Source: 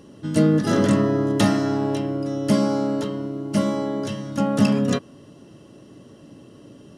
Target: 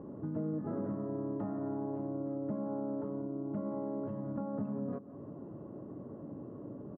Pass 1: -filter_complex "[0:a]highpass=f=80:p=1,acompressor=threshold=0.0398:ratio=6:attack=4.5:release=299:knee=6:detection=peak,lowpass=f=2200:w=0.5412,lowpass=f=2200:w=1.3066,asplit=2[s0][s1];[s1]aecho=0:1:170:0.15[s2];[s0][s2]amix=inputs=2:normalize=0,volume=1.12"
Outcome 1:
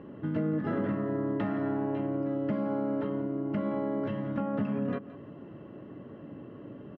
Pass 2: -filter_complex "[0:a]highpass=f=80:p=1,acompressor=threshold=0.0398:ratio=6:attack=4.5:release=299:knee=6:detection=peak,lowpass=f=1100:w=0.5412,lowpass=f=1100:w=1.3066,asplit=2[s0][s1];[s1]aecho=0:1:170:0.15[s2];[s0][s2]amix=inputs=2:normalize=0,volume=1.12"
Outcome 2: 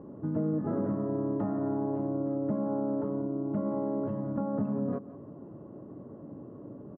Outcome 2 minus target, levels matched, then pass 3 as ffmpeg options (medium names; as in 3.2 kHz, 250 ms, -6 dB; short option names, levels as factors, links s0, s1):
compression: peak gain reduction -6 dB
-filter_complex "[0:a]highpass=f=80:p=1,acompressor=threshold=0.0168:ratio=6:attack=4.5:release=299:knee=6:detection=peak,lowpass=f=1100:w=0.5412,lowpass=f=1100:w=1.3066,asplit=2[s0][s1];[s1]aecho=0:1:170:0.15[s2];[s0][s2]amix=inputs=2:normalize=0,volume=1.12"